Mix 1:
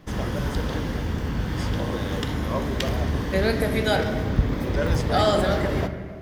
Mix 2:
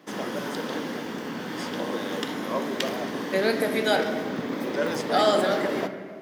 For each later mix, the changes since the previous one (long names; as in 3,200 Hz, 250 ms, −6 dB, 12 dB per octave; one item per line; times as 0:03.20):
master: add high-pass filter 220 Hz 24 dB per octave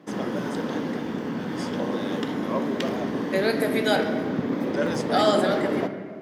background: add spectral tilt −2.5 dB per octave